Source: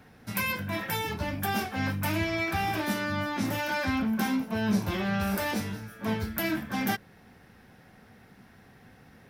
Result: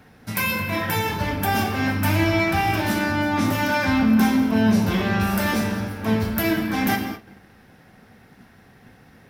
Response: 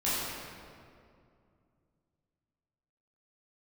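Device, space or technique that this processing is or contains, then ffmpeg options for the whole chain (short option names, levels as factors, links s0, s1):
keyed gated reverb: -filter_complex "[0:a]asplit=3[s0][s1][s2];[1:a]atrim=start_sample=2205[s3];[s1][s3]afir=irnorm=-1:irlink=0[s4];[s2]apad=whole_len=409993[s5];[s4][s5]sidechaingate=range=0.0224:threshold=0.00282:ratio=16:detection=peak,volume=0.299[s6];[s0][s6]amix=inputs=2:normalize=0,volume=1.5"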